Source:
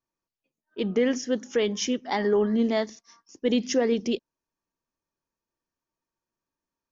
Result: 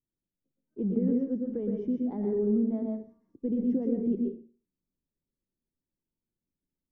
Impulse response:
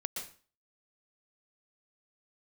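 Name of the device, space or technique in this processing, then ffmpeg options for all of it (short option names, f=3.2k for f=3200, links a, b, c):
television next door: -filter_complex "[0:a]acompressor=threshold=-23dB:ratio=6,lowpass=260[a];[1:a]atrim=start_sample=2205[b];[a][b]afir=irnorm=-1:irlink=0,volume=4dB"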